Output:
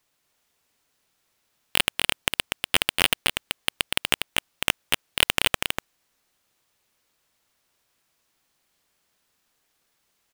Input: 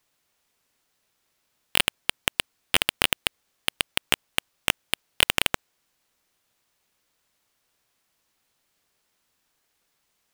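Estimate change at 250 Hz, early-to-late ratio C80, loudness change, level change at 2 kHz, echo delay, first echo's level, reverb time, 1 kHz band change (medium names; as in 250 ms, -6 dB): +1.0 dB, no reverb, +1.0 dB, +1.5 dB, 242 ms, -4.5 dB, no reverb, +1.5 dB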